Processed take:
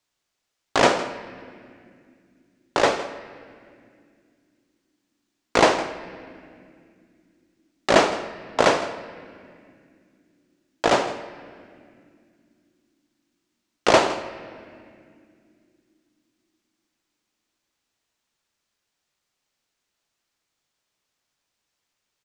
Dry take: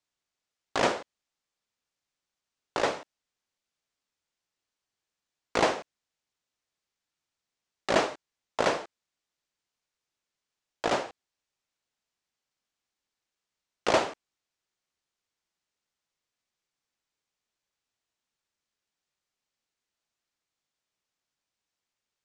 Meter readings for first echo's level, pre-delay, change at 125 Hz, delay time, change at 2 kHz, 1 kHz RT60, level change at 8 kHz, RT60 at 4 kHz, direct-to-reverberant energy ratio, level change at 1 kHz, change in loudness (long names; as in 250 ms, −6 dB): −16.0 dB, 3 ms, +8.5 dB, 161 ms, +8.5 dB, 2.0 s, +8.0 dB, 1.7 s, 10.0 dB, +8.5 dB, +7.5 dB